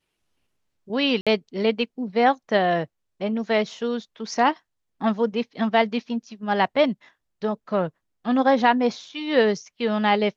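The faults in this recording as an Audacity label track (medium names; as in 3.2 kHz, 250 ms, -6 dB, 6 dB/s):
1.210000	1.270000	dropout 56 ms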